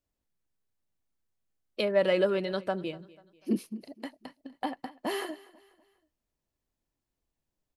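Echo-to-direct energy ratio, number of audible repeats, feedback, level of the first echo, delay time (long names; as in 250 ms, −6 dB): −20.0 dB, 2, 41%, −21.0 dB, 245 ms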